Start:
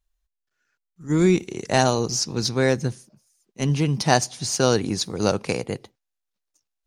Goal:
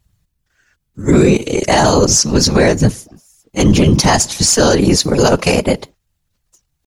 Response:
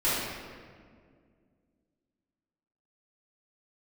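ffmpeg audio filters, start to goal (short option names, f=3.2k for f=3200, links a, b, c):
-af "afftfilt=real='hypot(re,im)*cos(2*PI*random(0))':imag='hypot(re,im)*sin(2*PI*random(1))':win_size=512:overlap=0.75,asetrate=46722,aresample=44100,atempo=0.943874,alimiter=level_in=22.5dB:limit=-1dB:release=50:level=0:latency=1,volume=-1dB"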